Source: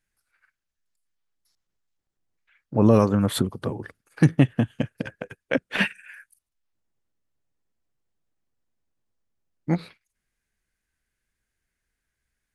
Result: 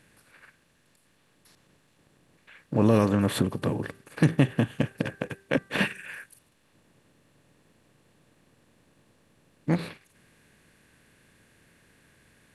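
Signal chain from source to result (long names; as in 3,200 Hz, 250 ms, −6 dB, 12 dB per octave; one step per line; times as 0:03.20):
compressor on every frequency bin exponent 0.6
hum removal 391.5 Hz, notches 5
level −5.5 dB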